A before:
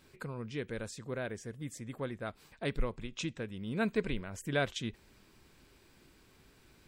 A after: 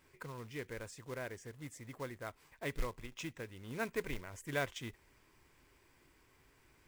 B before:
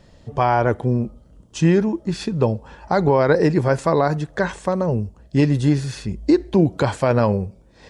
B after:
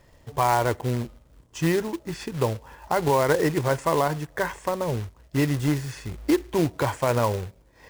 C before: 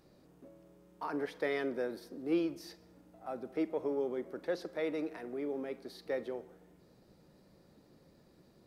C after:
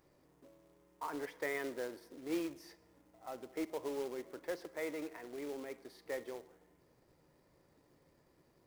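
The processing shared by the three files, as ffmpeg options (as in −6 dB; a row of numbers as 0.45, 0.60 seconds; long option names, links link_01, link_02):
-af "equalizer=frequency=200:width_type=o:width=0.33:gain=-11,equalizer=frequency=1000:width_type=o:width=0.33:gain=6,equalizer=frequency=2000:width_type=o:width=0.33:gain=6,equalizer=frequency=4000:width_type=o:width=0.33:gain=-7,acrusher=bits=3:mode=log:mix=0:aa=0.000001,volume=-5.5dB"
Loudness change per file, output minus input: −5.5, −5.5, −5.0 LU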